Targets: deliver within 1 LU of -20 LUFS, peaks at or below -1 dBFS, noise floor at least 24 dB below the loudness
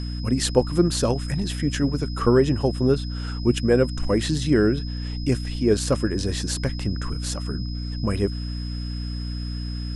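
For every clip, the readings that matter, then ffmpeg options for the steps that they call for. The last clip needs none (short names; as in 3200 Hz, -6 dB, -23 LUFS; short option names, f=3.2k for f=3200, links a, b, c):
hum 60 Hz; harmonics up to 300 Hz; hum level -27 dBFS; steady tone 5100 Hz; tone level -39 dBFS; loudness -24.0 LUFS; peak -4.5 dBFS; loudness target -20.0 LUFS
-> -af "bandreject=f=60:t=h:w=6,bandreject=f=120:t=h:w=6,bandreject=f=180:t=h:w=6,bandreject=f=240:t=h:w=6,bandreject=f=300:t=h:w=6"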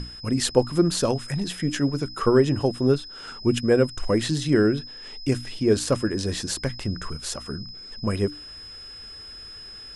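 hum none; steady tone 5100 Hz; tone level -39 dBFS
-> -af "bandreject=f=5.1k:w=30"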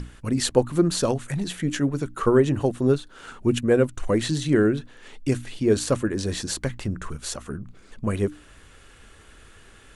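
steady tone none; loudness -24.5 LUFS; peak -3.5 dBFS; loudness target -20.0 LUFS
-> -af "volume=4.5dB,alimiter=limit=-1dB:level=0:latency=1"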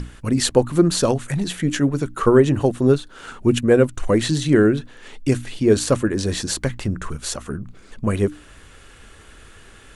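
loudness -20.0 LUFS; peak -1.0 dBFS; noise floor -46 dBFS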